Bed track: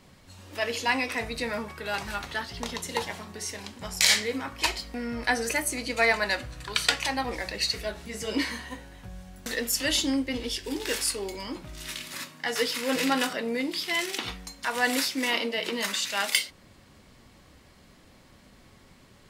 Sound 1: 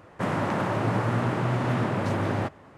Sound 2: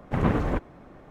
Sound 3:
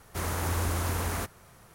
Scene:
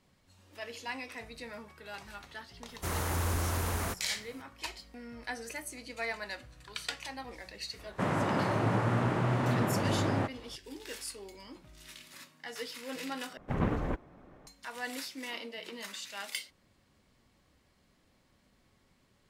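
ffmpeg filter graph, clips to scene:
ffmpeg -i bed.wav -i cue0.wav -i cue1.wav -i cue2.wav -filter_complex "[0:a]volume=-13.5dB[link_01];[3:a]asoftclip=type=hard:threshold=-23dB[link_02];[link_01]asplit=2[link_03][link_04];[link_03]atrim=end=13.374[link_05];[2:a]atrim=end=1.1,asetpts=PTS-STARTPTS,volume=-7dB[link_06];[link_04]atrim=start=14.466[link_07];[link_02]atrim=end=1.74,asetpts=PTS-STARTPTS,volume=-2dB,afade=type=in:duration=0.004:curve=hsin,afade=type=out:start_time=1.736:duration=0.004:curve=hsin,adelay=2680[link_08];[1:a]atrim=end=2.77,asetpts=PTS-STARTPTS,volume=-3.5dB,afade=type=in:duration=0.004:curve=hsin,afade=type=out:start_time=2.766:duration=0.004:curve=hsin,adelay=7790[link_09];[link_05][link_06]acrossfade=duration=0.004:curve1=hsin:curve2=hsin[link_10];[link_10][link_07]acrossfade=duration=0.004:curve1=hsin:curve2=hsin[link_11];[link_11][link_08][link_09]amix=inputs=3:normalize=0" out.wav

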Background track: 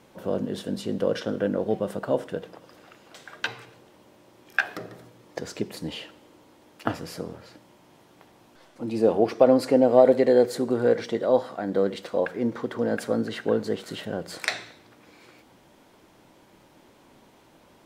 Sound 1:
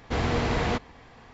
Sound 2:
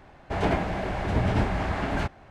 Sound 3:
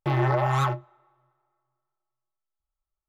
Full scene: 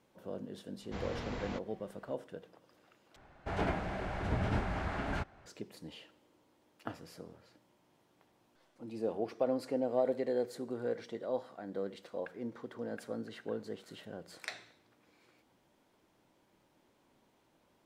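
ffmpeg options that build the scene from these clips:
ffmpeg -i bed.wav -i cue0.wav -i cue1.wav -filter_complex "[0:a]volume=-15dB[link_01];[2:a]equalizer=frequency=1400:width=5.3:gain=4.5[link_02];[link_01]asplit=2[link_03][link_04];[link_03]atrim=end=3.164[link_05];[link_02]atrim=end=2.3,asetpts=PTS-STARTPTS,volume=-9dB[link_06];[link_04]atrim=start=5.456[link_07];[1:a]atrim=end=1.33,asetpts=PTS-STARTPTS,volume=-15.5dB,afade=type=in:duration=0.004:curve=hsin,afade=type=out:start_time=1.326:duration=0.004:curve=hsin,adelay=810[link_08];[link_05][link_06]acrossfade=duration=0.004:curve1=hsin:curve2=hsin[link_09];[link_09][link_07]acrossfade=duration=0.004:curve1=hsin:curve2=hsin[link_10];[link_10][link_08]amix=inputs=2:normalize=0" out.wav

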